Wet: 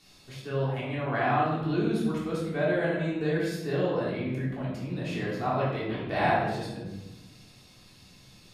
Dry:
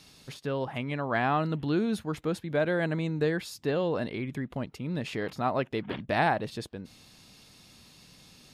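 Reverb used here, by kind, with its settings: simulated room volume 450 m³, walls mixed, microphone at 3.4 m; trim -8.5 dB

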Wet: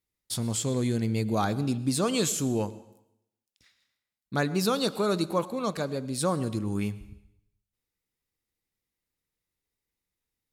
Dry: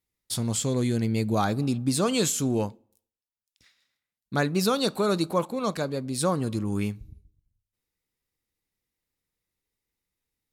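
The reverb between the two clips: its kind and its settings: plate-style reverb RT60 0.79 s, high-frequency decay 1×, pre-delay 85 ms, DRR 17 dB; trim -2 dB

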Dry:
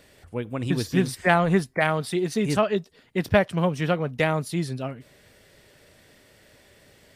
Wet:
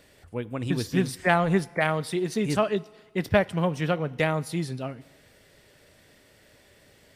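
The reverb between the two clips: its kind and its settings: FDN reverb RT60 1.5 s, low-frequency decay 0.75×, high-frequency decay 0.95×, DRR 20 dB; trim -2 dB

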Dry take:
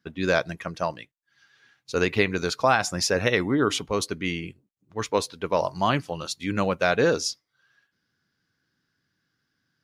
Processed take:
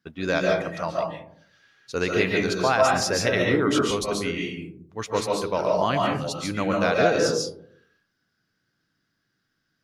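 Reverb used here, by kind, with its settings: algorithmic reverb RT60 0.64 s, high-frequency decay 0.3×, pre-delay 100 ms, DRR -1.5 dB; trim -2.5 dB

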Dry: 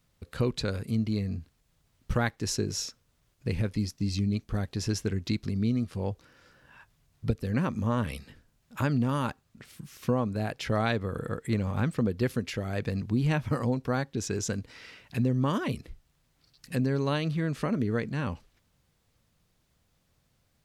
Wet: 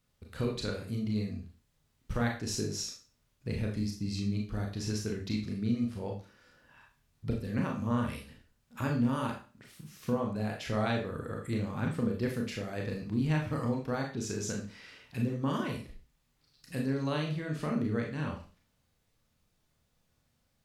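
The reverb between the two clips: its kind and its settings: Schroeder reverb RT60 0.36 s, combs from 26 ms, DRR 0 dB; trim -6.5 dB

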